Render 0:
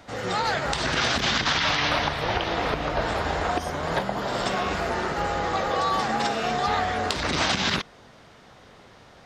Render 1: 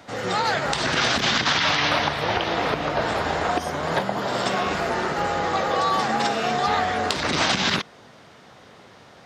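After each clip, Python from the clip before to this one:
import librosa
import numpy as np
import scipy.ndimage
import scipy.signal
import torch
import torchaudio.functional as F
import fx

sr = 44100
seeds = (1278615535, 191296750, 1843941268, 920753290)

y = scipy.signal.sosfilt(scipy.signal.butter(2, 100.0, 'highpass', fs=sr, output='sos'), x)
y = y * 10.0 ** (2.5 / 20.0)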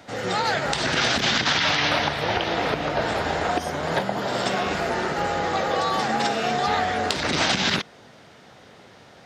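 y = fx.peak_eq(x, sr, hz=1100.0, db=-4.5, octaves=0.35)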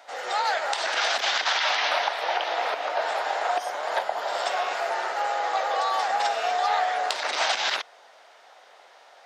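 y = fx.ladder_highpass(x, sr, hz=560.0, resonance_pct=35)
y = y * 10.0 ** (4.0 / 20.0)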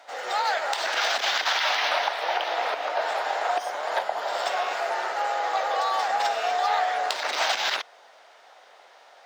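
y = scipy.ndimage.median_filter(x, 3, mode='constant')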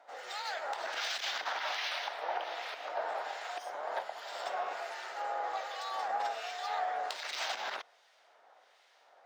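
y = fx.harmonic_tremolo(x, sr, hz=1.3, depth_pct=70, crossover_hz=1700.0)
y = y * 10.0 ** (-8.0 / 20.0)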